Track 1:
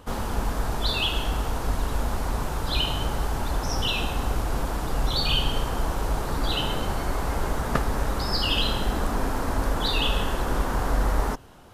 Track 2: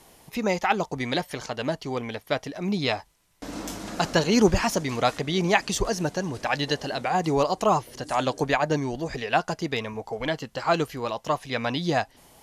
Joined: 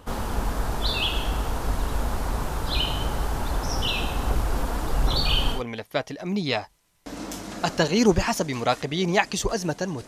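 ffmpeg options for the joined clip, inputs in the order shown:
ffmpeg -i cue0.wav -i cue1.wav -filter_complex "[0:a]asettb=1/sr,asplit=3[link_01][link_02][link_03];[link_01]atrim=end=4.284[link_04];[link_02]atrim=start=4.28:end=5.63,asetpts=PTS-STARTPTS,afade=type=in:duration=0.004:curve=qsin,afade=type=out:start_time=1.346:duration=0.004:curve=qsin,aphaser=in_gain=1:out_gain=1:delay=4.3:decay=0.27:speed=1.2:type=sinusoidal[link_05];[link_03]atrim=start=5.626[link_06];[link_04][link_05]acrossfade=duration=0.004:curve1=hsin:curve2=qsin[link_07];[link_07][link_06]acrossfade=duration=0.004:curve1=qsin:curve2=hsin,apad=whole_dur=10.07,atrim=end=10.07,atrim=end=5.63,asetpts=PTS-STARTPTS[link_08];[1:a]atrim=start=1.87:end=6.43,asetpts=PTS-STARTPTS[link_09];[link_08][link_09]acrossfade=duration=0.12:curve1=tri:curve2=tri" out.wav

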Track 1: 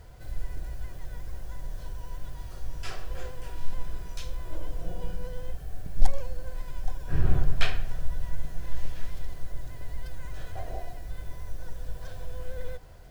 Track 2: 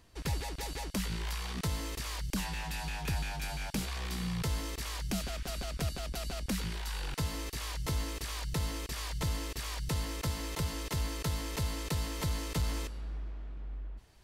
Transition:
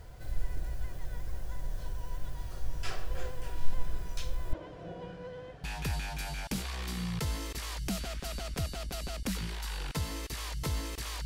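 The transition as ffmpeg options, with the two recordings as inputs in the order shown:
ffmpeg -i cue0.wav -i cue1.wav -filter_complex "[0:a]asettb=1/sr,asplit=3[link_01][link_02][link_03];[link_01]atrim=end=4.534[link_04];[link_02]atrim=start=4.53:end=5.64,asetpts=PTS-STARTPTS,afade=type=in:duration=0.004:curve=qsin,afade=type=out:start_time=1.106:duration=0.004:curve=qsin,highpass=150,lowpass=3400[link_05];[link_03]atrim=start=5.636[link_06];[link_04][link_05]acrossfade=duration=0.004:curve1=hsin:curve2=qsin[link_07];[link_07][link_06]acrossfade=duration=0.004:curve1=qsin:curve2=hsin,apad=whole_dur=11.25,atrim=end=11.25,atrim=end=5.642[link_08];[1:a]atrim=start=2.868:end=8.48[link_09];[link_08][link_09]acrossfade=duration=0.004:curve1=hsin:curve2=hsin" out.wav

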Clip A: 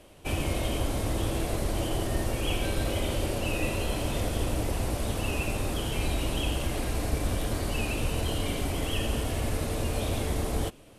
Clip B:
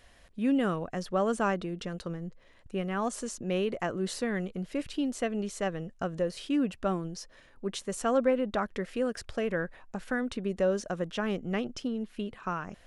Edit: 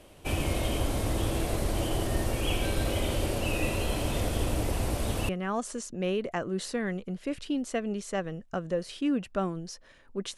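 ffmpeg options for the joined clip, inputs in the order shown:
ffmpeg -i cue0.wav -i cue1.wav -filter_complex "[0:a]apad=whole_dur=10.37,atrim=end=10.37,atrim=end=5.292[link_01];[1:a]atrim=start=2.768:end=7.85[link_02];[link_01][link_02]acrossfade=duration=0.004:curve1=hsin:curve2=hsin" out.wav

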